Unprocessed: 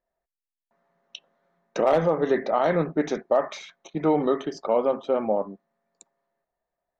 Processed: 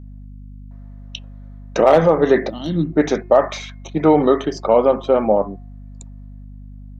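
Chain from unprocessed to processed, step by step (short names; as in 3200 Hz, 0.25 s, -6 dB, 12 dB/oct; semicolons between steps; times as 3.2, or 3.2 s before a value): spectral gain 2.49–2.93, 360–2700 Hz -24 dB; de-hum 356.7 Hz, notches 7; hum 50 Hz, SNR 18 dB; gain +8.5 dB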